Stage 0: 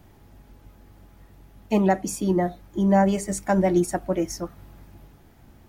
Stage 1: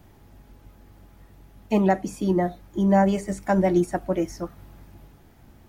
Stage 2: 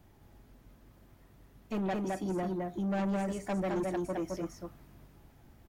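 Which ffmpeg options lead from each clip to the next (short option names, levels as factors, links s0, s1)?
-filter_complex "[0:a]acrossover=split=3300[s0][s1];[s1]acompressor=threshold=0.00891:ratio=4:attack=1:release=60[s2];[s0][s2]amix=inputs=2:normalize=0"
-af "aecho=1:1:214:0.668,asoftclip=type=tanh:threshold=0.0944,volume=0.398"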